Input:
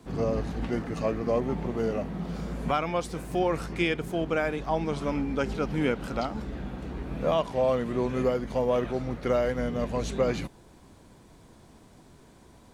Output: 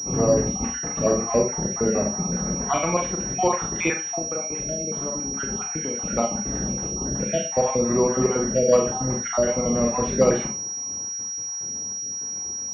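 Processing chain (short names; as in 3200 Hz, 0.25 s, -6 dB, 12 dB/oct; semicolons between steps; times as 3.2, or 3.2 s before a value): random spectral dropouts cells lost 45%; HPF 74 Hz; 4.02–5.95 compressor 10:1, threshold -35 dBFS, peak gain reduction 13.5 dB; Schroeder reverb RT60 0.3 s, combs from 30 ms, DRR 2 dB; pulse-width modulation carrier 5700 Hz; gain +6.5 dB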